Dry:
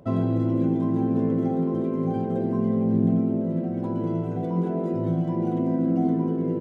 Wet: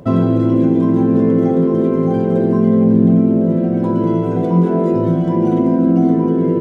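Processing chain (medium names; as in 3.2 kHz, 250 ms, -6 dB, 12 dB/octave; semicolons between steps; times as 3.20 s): peaking EQ 730 Hz -3.5 dB 0.47 oct; in parallel at -1.5 dB: peak limiter -20.5 dBFS, peak gain reduction 9 dB; on the sum: reverberation, pre-delay 3 ms, DRR 7 dB; trim +6.5 dB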